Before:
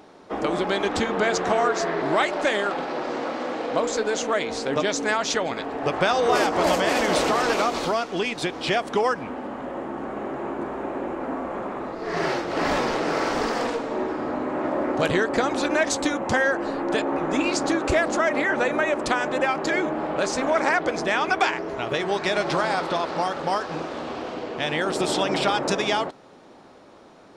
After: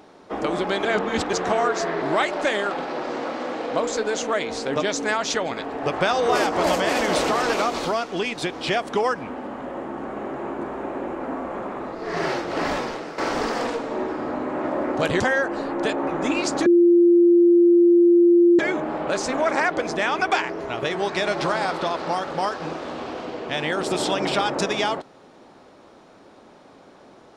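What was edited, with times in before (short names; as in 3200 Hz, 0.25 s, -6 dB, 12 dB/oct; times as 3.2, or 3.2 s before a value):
0.85–1.33 reverse
12.57–13.18 fade out, to -14 dB
15.2–16.29 cut
17.75–19.68 bleep 346 Hz -11 dBFS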